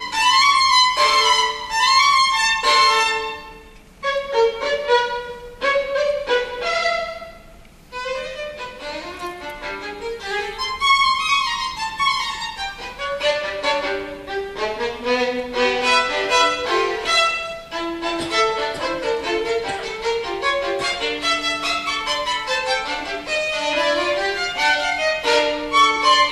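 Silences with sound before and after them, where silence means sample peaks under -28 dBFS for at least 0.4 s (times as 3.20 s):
3.48–4.03 s
7.24–7.94 s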